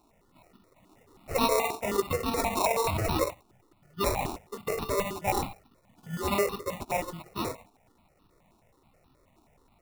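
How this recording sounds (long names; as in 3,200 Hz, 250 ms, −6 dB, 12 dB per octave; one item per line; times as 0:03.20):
aliases and images of a low sample rate 1,600 Hz, jitter 0%
notches that jump at a steady rate 9.4 Hz 530–2,100 Hz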